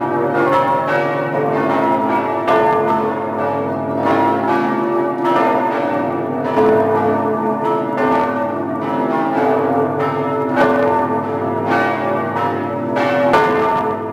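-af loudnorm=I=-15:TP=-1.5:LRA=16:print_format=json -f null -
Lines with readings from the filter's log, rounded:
"input_i" : "-16.5",
"input_tp" : "-4.6",
"input_lra" : "1.3",
"input_thresh" : "-26.5",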